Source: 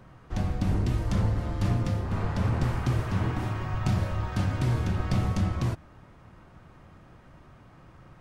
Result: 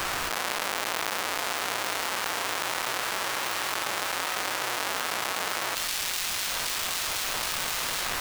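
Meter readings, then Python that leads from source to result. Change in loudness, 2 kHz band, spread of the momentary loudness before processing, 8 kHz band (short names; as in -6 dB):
+0.5 dB, +13.0 dB, 4 LU, +20.0 dB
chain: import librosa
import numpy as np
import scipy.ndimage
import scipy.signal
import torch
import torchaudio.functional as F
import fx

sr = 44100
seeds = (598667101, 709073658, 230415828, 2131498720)

y = fx.halfwave_hold(x, sr)
y = scipy.signal.sosfilt(scipy.signal.butter(2, 940.0, 'highpass', fs=sr, output='sos'), y)
y = fx.dmg_noise_colour(y, sr, seeds[0], colour='pink', level_db=-68.0)
y = fx.echo_wet_highpass(y, sr, ms=772, feedback_pct=67, hz=3100.0, wet_db=-12.0)
y = fx.env_flatten(y, sr, amount_pct=100)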